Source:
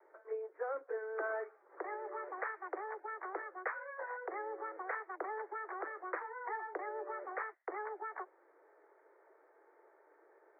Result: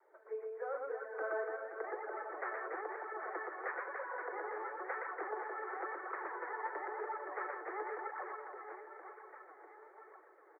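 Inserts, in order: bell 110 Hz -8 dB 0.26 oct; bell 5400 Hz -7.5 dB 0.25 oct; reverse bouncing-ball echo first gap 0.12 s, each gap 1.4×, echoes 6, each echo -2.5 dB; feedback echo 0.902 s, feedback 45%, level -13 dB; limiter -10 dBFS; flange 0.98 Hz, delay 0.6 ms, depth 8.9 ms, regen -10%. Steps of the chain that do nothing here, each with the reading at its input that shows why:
bell 110 Hz: input band starts at 290 Hz; bell 5400 Hz: input band ends at 2300 Hz; limiter -10 dBFS: input peak -23.5 dBFS

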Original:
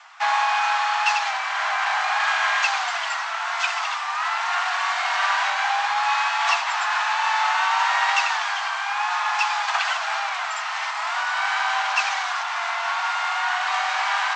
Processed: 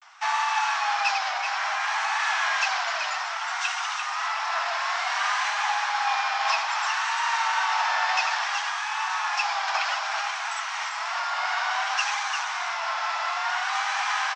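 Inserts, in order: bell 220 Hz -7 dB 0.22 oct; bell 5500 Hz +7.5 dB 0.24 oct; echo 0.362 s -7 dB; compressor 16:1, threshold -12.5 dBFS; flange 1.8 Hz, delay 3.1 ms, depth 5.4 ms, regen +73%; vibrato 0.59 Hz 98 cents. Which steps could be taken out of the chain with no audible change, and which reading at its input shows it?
bell 220 Hz: input band starts at 570 Hz

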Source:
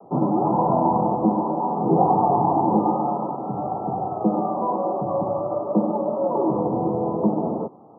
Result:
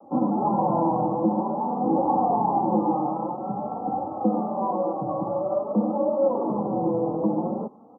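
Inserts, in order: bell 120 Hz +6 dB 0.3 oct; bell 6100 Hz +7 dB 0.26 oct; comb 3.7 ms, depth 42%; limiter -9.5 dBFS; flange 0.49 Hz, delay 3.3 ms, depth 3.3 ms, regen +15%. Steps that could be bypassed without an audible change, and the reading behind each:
bell 6100 Hz: input band ends at 1400 Hz

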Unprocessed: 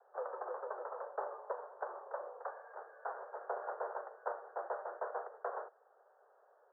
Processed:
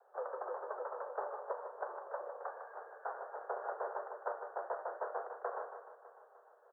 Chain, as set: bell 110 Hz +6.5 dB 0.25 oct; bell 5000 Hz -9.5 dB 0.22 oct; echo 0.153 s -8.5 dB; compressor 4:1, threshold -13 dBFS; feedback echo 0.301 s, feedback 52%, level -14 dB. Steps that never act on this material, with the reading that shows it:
bell 110 Hz: input band starts at 340 Hz; bell 5000 Hz: input band ends at 1800 Hz; compressor, threshold -13 dBFS: input peak -25.5 dBFS

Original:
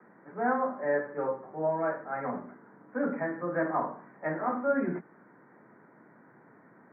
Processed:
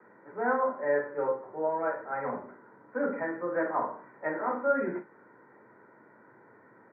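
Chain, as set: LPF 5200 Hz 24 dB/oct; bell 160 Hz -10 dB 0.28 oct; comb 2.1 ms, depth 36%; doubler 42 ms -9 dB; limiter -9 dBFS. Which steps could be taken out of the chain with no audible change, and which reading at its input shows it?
LPF 5200 Hz: input band ends at 2000 Hz; limiter -9 dBFS: input peak -15.0 dBFS

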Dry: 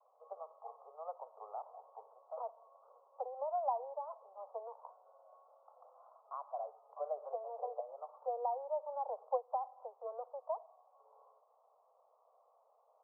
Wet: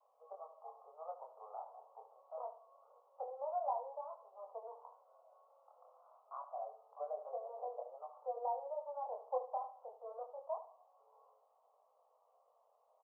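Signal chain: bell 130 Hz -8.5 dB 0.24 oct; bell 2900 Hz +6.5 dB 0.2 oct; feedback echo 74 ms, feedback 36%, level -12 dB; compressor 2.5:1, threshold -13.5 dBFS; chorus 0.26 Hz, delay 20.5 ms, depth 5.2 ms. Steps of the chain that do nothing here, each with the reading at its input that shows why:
bell 130 Hz: input band starts at 400 Hz; bell 2900 Hz: input band ends at 1300 Hz; compressor, threshold -13.5 dBFS: input peak -22.5 dBFS

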